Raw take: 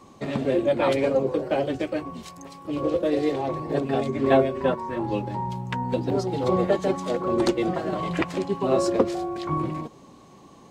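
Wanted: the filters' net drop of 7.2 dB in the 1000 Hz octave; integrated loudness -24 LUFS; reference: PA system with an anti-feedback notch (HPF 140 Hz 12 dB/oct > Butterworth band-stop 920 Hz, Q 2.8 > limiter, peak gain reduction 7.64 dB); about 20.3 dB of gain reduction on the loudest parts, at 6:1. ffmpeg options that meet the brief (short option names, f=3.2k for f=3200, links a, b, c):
-af "equalizer=f=1k:t=o:g=-5.5,acompressor=threshold=-38dB:ratio=6,highpass=140,asuperstop=centerf=920:order=8:qfactor=2.8,volume=19.5dB,alimiter=limit=-14dB:level=0:latency=1"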